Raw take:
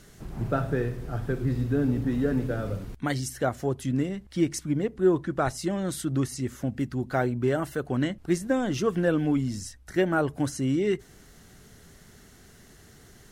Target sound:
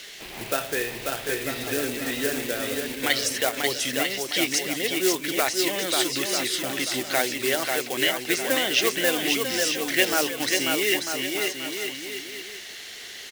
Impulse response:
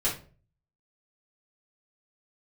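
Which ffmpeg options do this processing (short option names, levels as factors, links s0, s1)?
-filter_complex "[0:a]acrossover=split=350 3800:gain=0.0794 1 0.0891[s0][s1][s2];[s0][s1][s2]amix=inputs=3:normalize=0,asplit=2[s3][s4];[s4]acompressor=threshold=0.00891:ratio=12,volume=1.26[s5];[s3][s5]amix=inputs=2:normalize=0,acrusher=bits=6:mode=log:mix=0:aa=0.000001,aexciter=amount=7.6:drive=5.1:freq=2000,aecho=1:1:540|945|1249|1477|1647:0.631|0.398|0.251|0.158|0.1"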